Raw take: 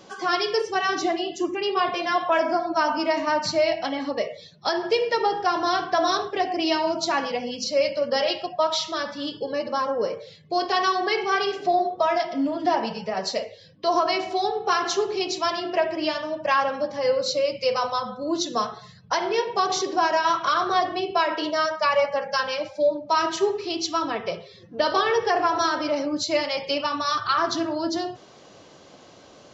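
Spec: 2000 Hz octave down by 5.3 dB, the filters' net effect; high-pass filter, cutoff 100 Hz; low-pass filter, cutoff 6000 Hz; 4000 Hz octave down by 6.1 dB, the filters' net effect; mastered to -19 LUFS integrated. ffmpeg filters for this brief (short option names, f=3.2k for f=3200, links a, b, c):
-af "highpass=100,lowpass=6k,equalizer=f=2k:t=o:g=-6,equalizer=f=4k:t=o:g=-5,volume=6.5dB"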